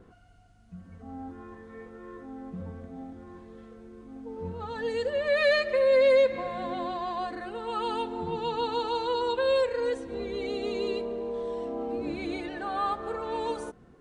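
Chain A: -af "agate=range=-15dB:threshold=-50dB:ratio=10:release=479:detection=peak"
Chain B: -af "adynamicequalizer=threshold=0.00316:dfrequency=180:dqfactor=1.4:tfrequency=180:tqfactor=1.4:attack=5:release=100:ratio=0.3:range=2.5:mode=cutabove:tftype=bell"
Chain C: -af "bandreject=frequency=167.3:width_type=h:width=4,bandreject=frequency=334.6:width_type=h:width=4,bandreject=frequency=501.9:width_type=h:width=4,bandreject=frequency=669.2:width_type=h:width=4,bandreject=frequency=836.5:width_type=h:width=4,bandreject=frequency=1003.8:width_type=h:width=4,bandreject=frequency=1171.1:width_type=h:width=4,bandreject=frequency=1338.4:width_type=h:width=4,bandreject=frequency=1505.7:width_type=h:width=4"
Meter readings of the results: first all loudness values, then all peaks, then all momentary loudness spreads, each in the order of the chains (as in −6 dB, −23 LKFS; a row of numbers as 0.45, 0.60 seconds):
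−28.5, −29.0, −29.0 LKFS; −13.5, −14.0, −13.5 dBFS; 22, 23, 22 LU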